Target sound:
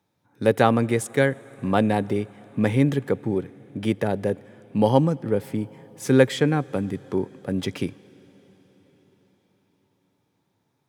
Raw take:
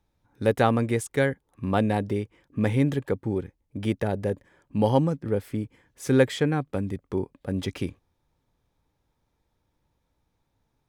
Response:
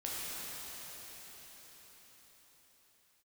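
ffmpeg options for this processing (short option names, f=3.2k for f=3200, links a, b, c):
-filter_complex "[0:a]highpass=f=110:w=0.5412,highpass=f=110:w=1.3066,asplit=2[a][b];[1:a]atrim=start_sample=2205[c];[b][c]afir=irnorm=-1:irlink=0,volume=-25dB[d];[a][d]amix=inputs=2:normalize=0,volume=3dB"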